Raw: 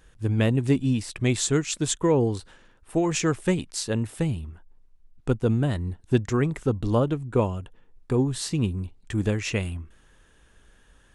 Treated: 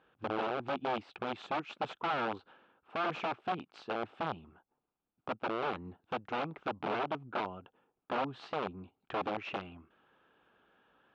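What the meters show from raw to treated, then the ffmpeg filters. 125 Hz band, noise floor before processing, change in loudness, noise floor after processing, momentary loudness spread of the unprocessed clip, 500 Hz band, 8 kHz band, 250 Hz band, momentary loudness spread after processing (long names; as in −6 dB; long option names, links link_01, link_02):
−25.5 dB, −58 dBFS, −12.0 dB, below −85 dBFS, 8 LU, −11.0 dB, below −35 dB, −17.5 dB, 8 LU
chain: -af "alimiter=limit=-17.5dB:level=0:latency=1:release=327,aeval=exprs='(mod(13.3*val(0)+1,2)-1)/13.3':channel_layout=same,highpass=240,equalizer=frequency=780:width_type=q:width=4:gain=6,equalizer=frequency=1300:width_type=q:width=4:gain=5,equalizer=frequency=1900:width_type=q:width=4:gain=-9,lowpass=frequency=3000:width=0.5412,lowpass=frequency=3000:width=1.3066,volume=-5.5dB"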